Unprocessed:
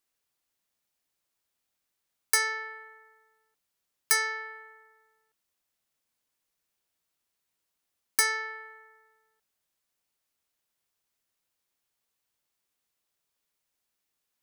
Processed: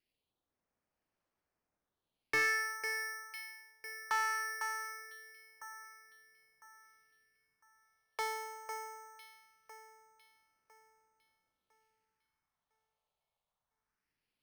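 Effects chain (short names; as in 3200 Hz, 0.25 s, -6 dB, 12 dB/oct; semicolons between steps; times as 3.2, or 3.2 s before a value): phaser stages 4, 0.21 Hz, lowest notch 280–4200 Hz; echo with dull and thin repeats by turns 0.502 s, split 2300 Hz, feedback 56%, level -7 dB; careless resampling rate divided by 6×, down filtered, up hold; slew limiter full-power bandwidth 73 Hz; gain +2.5 dB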